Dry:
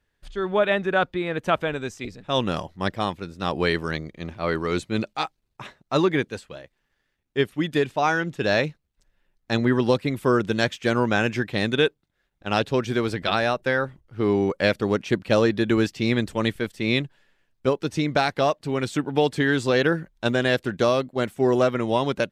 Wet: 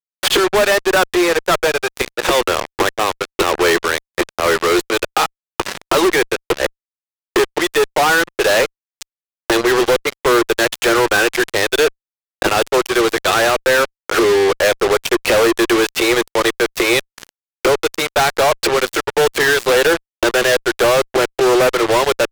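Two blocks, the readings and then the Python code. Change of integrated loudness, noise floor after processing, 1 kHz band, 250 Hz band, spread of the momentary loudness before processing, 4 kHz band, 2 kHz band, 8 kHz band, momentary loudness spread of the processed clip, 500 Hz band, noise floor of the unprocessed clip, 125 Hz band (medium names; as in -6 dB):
+8.0 dB, under -85 dBFS, +9.5 dB, +3.5 dB, 9 LU, +11.0 dB, +10.5 dB, +20.5 dB, 6 LU, +8.5 dB, -74 dBFS, -5.0 dB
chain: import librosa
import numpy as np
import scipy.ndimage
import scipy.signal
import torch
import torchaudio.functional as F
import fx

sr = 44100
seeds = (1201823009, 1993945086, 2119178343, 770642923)

y = fx.gate_flip(x, sr, shuts_db=-26.0, range_db=-26)
y = scipy.signal.sosfilt(scipy.signal.cheby1(6, 3, 340.0, 'highpass', fs=sr, output='sos'), y)
y = fx.fuzz(y, sr, gain_db=62.0, gate_db=-58.0)
y = y * librosa.db_to_amplitude(3.0)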